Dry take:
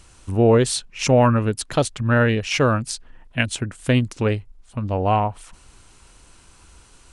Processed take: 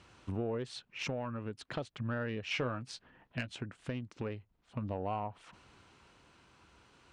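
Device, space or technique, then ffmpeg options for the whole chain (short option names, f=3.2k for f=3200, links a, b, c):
AM radio: -filter_complex "[0:a]highpass=110,lowpass=3.5k,acompressor=threshold=-28dB:ratio=5,asoftclip=type=tanh:threshold=-18dB,tremolo=f=0.38:d=0.3,asettb=1/sr,asplit=3[a][b][c];[a]atrim=end=2.484[d];[b]atrim=start=2.48:end=3.62,asetpts=PTS-STARTPTS,afade=t=in:d=0.004:c=qsin,afade=t=out:st=1.136:d=0.004:c=qsin,asplit=2[e][f];[f]adelay=16,volume=-10.5dB[g];[e][g]amix=inputs=2:normalize=0,atrim=end_sample=50274[h];[c]atrim=start=3.616[i];[d][h]acrossfade=d=0.004:c1=hsin:c2=qsin[j];[j][i]acrossfade=d=0.004:c1=qsin:c2=hsin,volume=-4.5dB"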